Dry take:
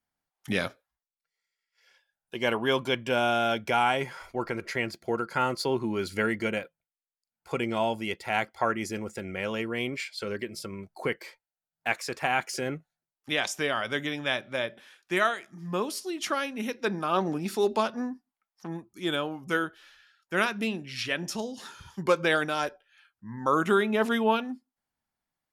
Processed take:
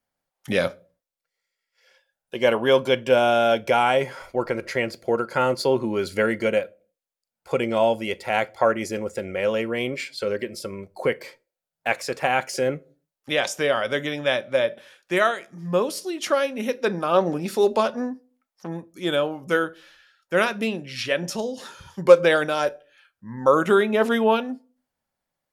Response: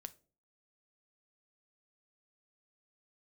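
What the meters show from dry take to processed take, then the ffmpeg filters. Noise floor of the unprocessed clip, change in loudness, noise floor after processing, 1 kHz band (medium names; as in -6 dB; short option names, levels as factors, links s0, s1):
under -85 dBFS, +6.0 dB, under -85 dBFS, +4.0 dB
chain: -filter_complex "[0:a]equalizer=f=540:w=3.3:g=10,asplit=2[s0][s1];[1:a]atrim=start_sample=2205,afade=t=out:st=0.42:d=0.01,atrim=end_sample=18963[s2];[s1][s2]afir=irnorm=-1:irlink=0,volume=1.78[s3];[s0][s3]amix=inputs=2:normalize=0,volume=0.75"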